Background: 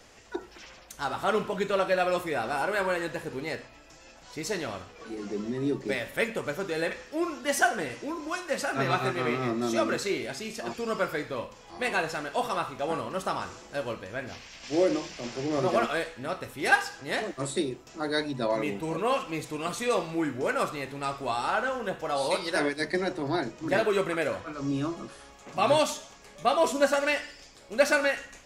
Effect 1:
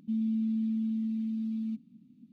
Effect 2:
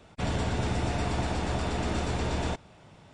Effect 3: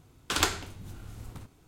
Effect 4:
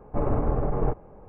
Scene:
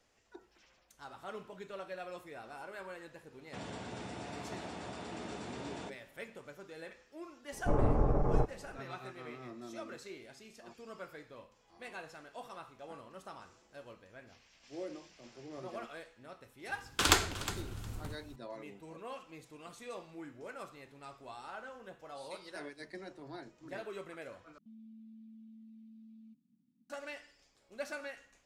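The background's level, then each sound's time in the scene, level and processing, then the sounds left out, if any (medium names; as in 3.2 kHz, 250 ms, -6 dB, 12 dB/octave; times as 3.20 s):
background -18.5 dB
3.34 s: add 2 -12 dB + high-pass 170 Hz
7.52 s: add 4 -4 dB
16.69 s: add 3 + feedback delay 361 ms, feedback 15%, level -14 dB
24.58 s: replace with 1 -17.5 dB + compression 2:1, threshold -40 dBFS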